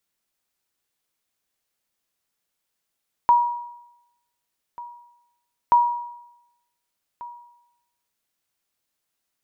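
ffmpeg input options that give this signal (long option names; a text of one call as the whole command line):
ffmpeg -f lavfi -i "aevalsrc='0.335*(sin(2*PI*958*mod(t,2.43))*exp(-6.91*mod(t,2.43)/0.87)+0.0891*sin(2*PI*958*max(mod(t,2.43)-1.49,0))*exp(-6.91*max(mod(t,2.43)-1.49,0)/0.87))':duration=4.86:sample_rate=44100" out.wav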